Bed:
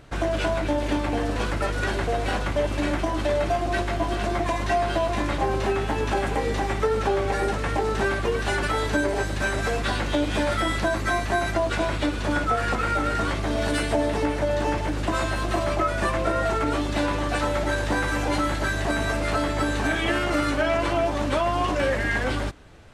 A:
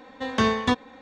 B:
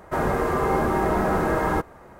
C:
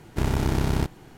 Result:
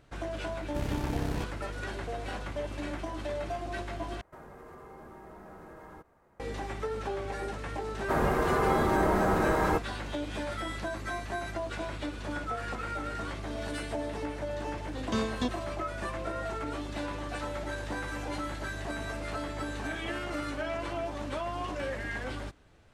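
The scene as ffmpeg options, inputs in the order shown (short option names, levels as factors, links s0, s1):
-filter_complex "[2:a]asplit=2[s0][s1];[0:a]volume=0.266[s2];[s0]acompressor=threshold=0.0447:ratio=6:attack=3.2:release=140:knee=1:detection=peak[s3];[1:a]equalizer=f=1400:t=o:w=1.4:g=-13.5[s4];[s2]asplit=2[s5][s6];[s5]atrim=end=4.214[s7];[s3]atrim=end=2.19,asetpts=PTS-STARTPTS,volume=0.126[s8];[s6]atrim=start=6.396[s9];[3:a]atrim=end=1.17,asetpts=PTS-STARTPTS,volume=0.316,afade=t=in:d=0.004:c=hsin,afade=t=out:st=1.166:d=0.004:c=hsin,adelay=580[s10];[s1]atrim=end=2.19,asetpts=PTS-STARTPTS,volume=0.631,afade=t=in:d=0.004:c=hsin,afade=t=out:st=2.186:d=0.004:c=hsin,adelay=7970[s11];[s4]atrim=end=1.01,asetpts=PTS-STARTPTS,volume=0.473,afade=t=in:d=0.004:c=hsin,afade=t=out:st=1.006:d=0.004:c=hsin,adelay=14740[s12];[s7][s8]acrossfade=d=0.004:c1=hsin:c2=hsin[s13];[s13][s9]acrossfade=d=0.004:c1=hsin:c2=hsin[s14];[s14][s10][s11][s12]amix=inputs=4:normalize=0"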